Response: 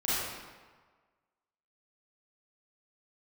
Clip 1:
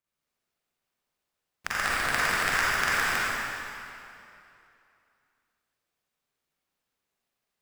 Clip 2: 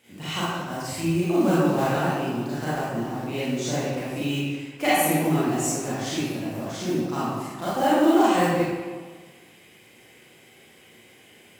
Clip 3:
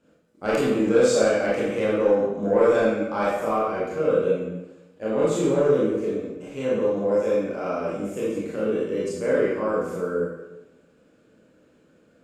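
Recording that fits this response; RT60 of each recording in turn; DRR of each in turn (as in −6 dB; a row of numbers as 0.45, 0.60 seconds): 2; 2.8, 1.5, 1.0 seconds; −8.5, −11.0, −8.0 decibels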